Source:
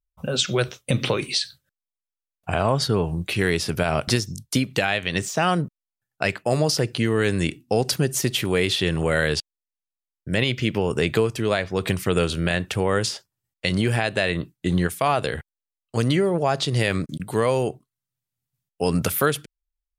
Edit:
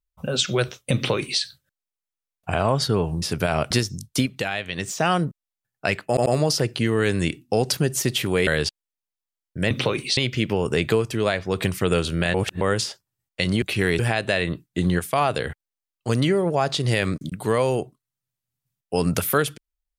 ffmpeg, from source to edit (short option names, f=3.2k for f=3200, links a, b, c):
-filter_complex "[0:a]asplit=13[a][b][c][d][e][f][g][h][i][j][k][l][m];[a]atrim=end=3.222[n];[b]atrim=start=3.588:end=4.632[o];[c]atrim=start=4.628:end=5.252,asetpts=PTS-STARTPTS,volume=-4.5dB[p];[d]atrim=start=5.248:end=6.542[q];[e]atrim=start=6.448:end=6.542[r];[f]atrim=start=6.448:end=8.662[s];[g]atrim=start=9.178:end=10.422[t];[h]atrim=start=0.948:end=1.412[u];[i]atrim=start=10.418:end=12.592[v];[j]atrim=start=12.588:end=12.862,asetpts=PTS-STARTPTS,areverse[w];[k]atrim=start=12.858:end=13.872[x];[l]atrim=start=3.218:end=3.592[y];[m]atrim=start=13.868[z];[n][o]acrossfade=d=0.004:c1=hsin:c2=hsin[aa];[aa][p]acrossfade=d=0.004:c1=hsin:c2=hsin[ab];[ab][q]acrossfade=d=0.004:c1=hsin:c2=hsin[ac];[ac][r]acrossfade=d=0.004:c1=hsin:c2=hsin[ad];[ad][s]acrossfade=d=0.004:c1=hsin:c2=hsin[ae];[ae][t]acrossfade=d=0.004:c1=hsin:c2=hsin[af];[af][u]acrossfade=d=0.004:c1=hsin:c2=hsin[ag];[ag][v]acrossfade=d=0.004:c1=hsin:c2=hsin[ah];[ah][w]acrossfade=d=0.004:c1=hsin:c2=hsin[ai];[ai][x]acrossfade=d=0.004:c1=hsin:c2=hsin[aj];[aj][y]acrossfade=d=0.004:c1=hsin:c2=hsin[ak];[ak][z]acrossfade=d=0.004:c1=hsin:c2=hsin"